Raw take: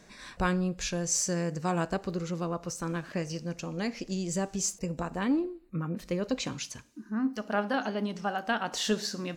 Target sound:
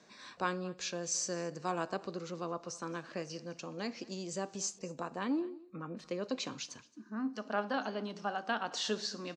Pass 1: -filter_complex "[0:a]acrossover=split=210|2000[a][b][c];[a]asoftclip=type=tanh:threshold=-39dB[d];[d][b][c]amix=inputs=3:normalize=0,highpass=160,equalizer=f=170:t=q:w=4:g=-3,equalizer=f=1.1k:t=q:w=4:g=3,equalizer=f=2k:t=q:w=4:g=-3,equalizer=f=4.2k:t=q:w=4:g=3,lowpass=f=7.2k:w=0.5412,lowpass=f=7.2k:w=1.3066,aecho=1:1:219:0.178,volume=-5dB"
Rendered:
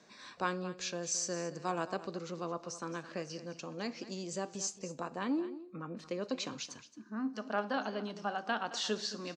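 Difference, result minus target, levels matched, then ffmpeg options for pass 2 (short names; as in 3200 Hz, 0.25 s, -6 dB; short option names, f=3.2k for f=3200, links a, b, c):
echo-to-direct +4 dB
-filter_complex "[0:a]acrossover=split=210|2000[a][b][c];[a]asoftclip=type=tanh:threshold=-39dB[d];[d][b][c]amix=inputs=3:normalize=0,highpass=160,equalizer=f=170:t=q:w=4:g=-3,equalizer=f=1.1k:t=q:w=4:g=3,equalizer=f=2k:t=q:w=4:g=-3,equalizer=f=4.2k:t=q:w=4:g=3,lowpass=f=7.2k:w=0.5412,lowpass=f=7.2k:w=1.3066,aecho=1:1:219:0.0794,volume=-5dB"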